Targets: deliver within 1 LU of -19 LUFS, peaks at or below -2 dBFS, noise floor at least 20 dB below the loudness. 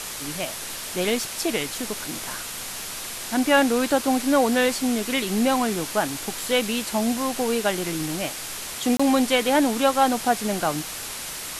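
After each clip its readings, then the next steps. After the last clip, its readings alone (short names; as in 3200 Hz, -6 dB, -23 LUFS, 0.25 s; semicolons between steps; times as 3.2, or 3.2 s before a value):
dropouts 1; longest dropout 25 ms; noise floor -34 dBFS; noise floor target -44 dBFS; loudness -23.5 LUFS; peak -7.0 dBFS; loudness target -19.0 LUFS
-> interpolate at 8.97, 25 ms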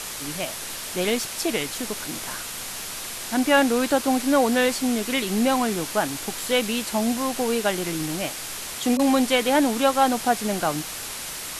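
dropouts 0; noise floor -34 dBFS; noise floor target -44 dBFS
-> denoiser 10 dB, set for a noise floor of -34 dBFS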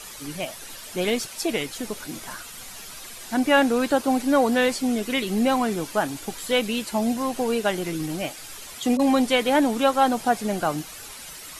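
noise floor -40 dBFS; noise floor target -44 dBFS
-> denoiser 6 dB, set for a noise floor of -40 dBFS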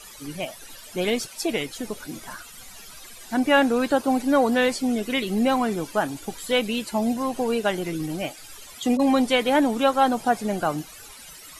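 noise floor -44 dBFS; loudness -23.5 LUFS; peak -7.0 dBFS; loudness target -19.0 LUFS
-> gain +4.5 dB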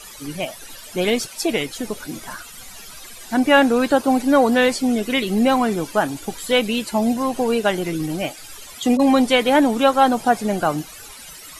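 loudness -19.0 LUFS; peak -2.5 dBFS; noise floor -40 dBFS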